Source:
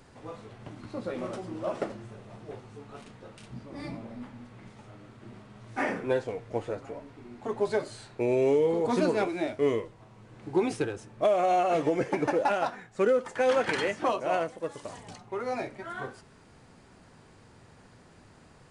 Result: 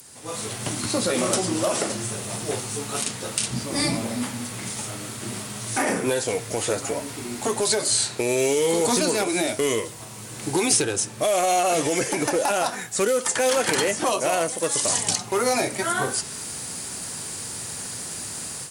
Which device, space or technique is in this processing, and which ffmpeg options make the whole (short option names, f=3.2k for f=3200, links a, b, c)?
FM broadcast chain: -filter_complex "[0:a]highpass=77,dynaudnorm=f=230:g=3:m=15dB,acrossover=split=1200|7700[a][b][c];[a]acompressor=threshold=-18dB:ratio=4[d];[b]acompressor=threshold=-33dB:ratio=4[e];[c]acompressor=threshold=-58dB:ratio=4[f];[d][e][f]amix=inputs=3:normalize=0,aemphasis=mode=production:type=75fm,alimiter=limit=-13.5dB:level=0:latency=1:release=27,asoftclip=type=hard:threshold=-15.5dB,lowpass=f=15k:w=0.5412,lowpass=f=15k:w=1.3066,aemphasis=mode=production:type=75fm"